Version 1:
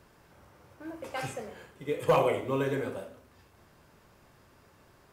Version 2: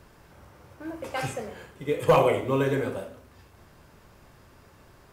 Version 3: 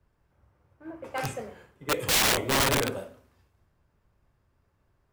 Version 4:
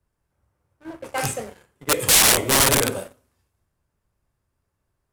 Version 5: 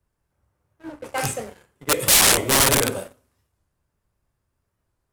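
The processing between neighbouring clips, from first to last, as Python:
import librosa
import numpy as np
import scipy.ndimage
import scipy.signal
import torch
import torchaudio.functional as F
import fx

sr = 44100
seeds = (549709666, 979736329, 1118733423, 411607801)

y1 = fx.low_shelf(x, sr, hz=75.0, db=7.5)
y1 = y1 * 10.0 ** (4.5 / 20.0)
y2 = (np.mod(10.0 ** (20.0 / 20.0) * y1 + 1.0, 2.0) - 1.0) / 10.0 ** (20.0 / 20.0)
y2 = fx.band_widen(y2, sr, depth_pct=70)
y2 = y2 * 10.0 ** (-1.0 / 20.0)
y3 = fx.leveller(y2, sr, passes=2)
y3 = fx.peak_eq(y3, sr, hz=9900.0, db=11.5, octaves=1.4)
y3 = y3 * 10.0 ** (-2.0 / 20.0)
y4 = fx.record_warp(y3, sr, rpm=45.0, depth_cents=160.0)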